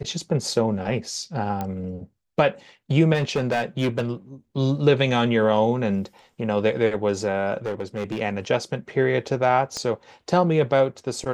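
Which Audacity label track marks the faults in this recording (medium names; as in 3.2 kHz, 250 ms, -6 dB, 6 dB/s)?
1.610000	1.610000	pop -15 dBFS
3.140000	4.010000	clipped -17.5 dBFS
7.660000	8.200000	clipped -22.5 dBFS
9.770000	9.770000	pop -16 dBFS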